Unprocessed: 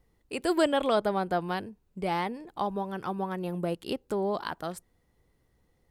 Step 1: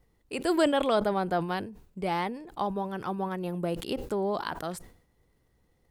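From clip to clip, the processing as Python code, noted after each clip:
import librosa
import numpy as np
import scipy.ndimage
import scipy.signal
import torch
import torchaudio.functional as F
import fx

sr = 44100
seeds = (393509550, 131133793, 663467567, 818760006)

y = fx.sustainer(x, sr, db_per_s=100.0)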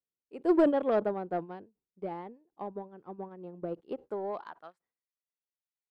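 y = fx.filter_sweep_bandpass(x, sr, from_hz=380.0, to_hz=2700.0, start_s=3.68, end_s=5.43, q=0.84)
y = 10.0 ** (-21.0 / 20.0) * np.tanh(y / 10.0 ** (-21.0 / 20.0))
y = fx.upward_expand(y, sr, threshold_db=-50.0, expansion=2.5)
y = F.gain(torch.from_numpy(y), 6.0).numpy()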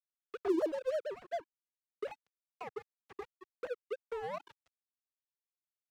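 y = fx.sine_speech(x, sr)
y = np.sign(y) * np.maximum(np.abs(y) - 10.0 ** (-42.0 / 20.0), 0.0)
y = fx.band_squash(y, sr, depth_pct=70)
y = F.gain(torch.from_numpy(y), 1.0).numpy()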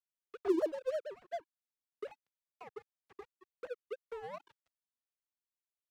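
y = fx.upward_expand(x, sr, threshold_db=-44.0, expansion=1.5)
y = F.gain(torch.from_numpy(y), 1.5).numpy()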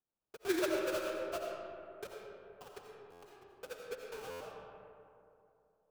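y = fx.sample_hold(x, sr, seeds[0], rate_hz=2000.0, jitter_pct=20)
y = fx.rev_freeverb(y, sr, rt60_s=2.8, hf_ratio=0.4, predelay_ms=45, drr_db=-0.5)
y = fx.buffer_glitch(y, sr, at_s=(3.12, 4.3), block=512, repeats=8)
y = F.gain(torch.from_numpy(y), -3.5).numpy()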